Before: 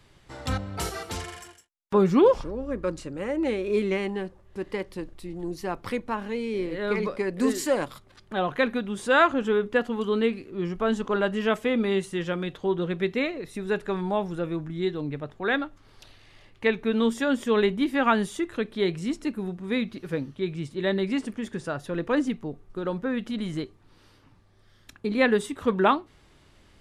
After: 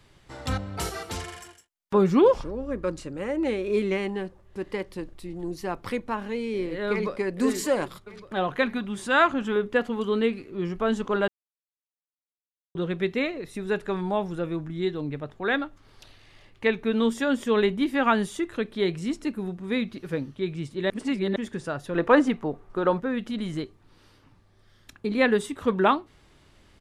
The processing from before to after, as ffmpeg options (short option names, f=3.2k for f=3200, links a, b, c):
-filter_complex "[0:a]asplit=2[a][b];[b]afade=t=in:st=6.9:d=0.01,afade=t=out:st=7.39:d=0.01,aecho=0:1:580|1160|1740|2320|2900|3480|4060|4640|5220:0.177828|0.12448|0.0871357|0.060995|0.0426965|0.0298875|0.0209213|0.0146449|0.0102514[c];[a][c]amix=inputs=2:normalize=0,asettb=1/sr,asplit=3[d][e][f];[d]atrim=end=8.624[g];[e]atrim=start=8.62:end=9.56,asetpts=PTS-STARTPTS,afade=t=in:d=0.004:c=qsin,afade=t=out:st=0.936:d=0.004:c=qsin,equalizer=f=470:w=4.9:g=-11.5[h];[f]atrim=start=9.556[i];[g][h]acrossfade=d=0.004:c1=hsin:c2=qsin[j];[j][i]acrossfade=d=0.004:c1=qsin:c2=hsin,asettb=1/sr,asplit=3[k][l][m];[k]atrim=end=21.954[n];[l]atrim=start=21.95:end=23,asetpts=PTS-STARTPTS,afade=t=in:d=0.004:c=qsin,afade=t=out:st=1.046:d=0.004:c=qsin,equalizer=f=950:t=o:w=2.7:g=10.5[o];[m]atrim=start=22.996[p];[n][o]acrossfade=d=0.004:c1=hsin:c2=qsin[q];[q][p]acrossfade=d=0.004:c1=qsin:c2=hsin,asplit=5[r][s][t][u][v];[r]atrim=end=11.28,asetpts=PTS-STARTPTS,afade=t=out:st=11.276:d=0.004:c=hsin[w];[s]atrim=start=11.28:end=12.75,asetpts=PTS-STARTPTS,volume=0[x];[t]atrim=start=12.75:end=20.902,asetpts=PTS-STARTPTS,afade=t=in:d=0.004:c=hsin[y];[u]atrim=start=20.898:end=21.362,asetpts=PTS-STARTPTS,areverse[z];[v]atrim=start=21.358[aa];[w][x][y]concat=n=3:v=0:a=1[ab];[ab][z]acrossfade=d=0.004:c1=hsin:c2=hsin[ac];[ac][aa]acrossfade=d=0.004:c1=hsin:c2=hsin"